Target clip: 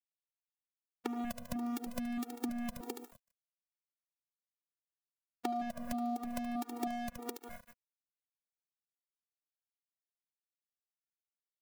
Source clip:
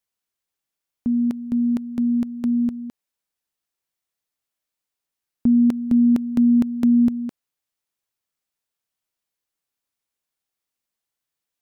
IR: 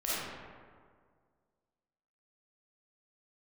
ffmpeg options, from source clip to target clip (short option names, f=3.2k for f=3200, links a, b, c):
-filter_complex "[0:a]aeval=exprs='0.266*sin(PI/2*1.41*val(0)/0.266)':c=same,equalizer=f=220:t=o:w=2.5:g=-12,aecho=1:1:73|146|219:0.376|0.0864|0.0199,crystalizer=i=2:c=0,asplit=2[a][b];[b]lowpass=f=1.1k:p=1[c];[1:a]atrim=start_sample=2205[d];[c][d]afir=irnorm=-1:irlink=0,volume=-17.5dB[e];[a][e]amix=inputs=2:normalize=0,aphaser=in_gain=1:out_gain=1:delay=4.2:decay=0.5:speed=0.24:type=triangular,acompressor=threshold=-41dB:ratio=3,aeval=exprs='sgn(val(0))*max(abs(val(0))-0.00447,0)':c=same,acrossover=split=120|620[f][g][h];[f]acompressor=threshold=-60dB:ratio=4[i];[g]acompressor=threshold=-48dB:ratio=4[j];[h]acompressor=threshold=-54dB:ratio=4[k];[i][j][k]amix=inputs=3:normalize=0,afftfilt=real='re*gt(sin(2*PI*1.6*pts/sr)*(1-2*mod(floor(b*sr/1024/240),2)),0)':imag='im*gt(sin(2*PI*1.6*pts/sr)*(1-2*mod(floor(b*sr/1024/240),2)),0)':win_size=1024:overlap=0.75,volume=15.5dB"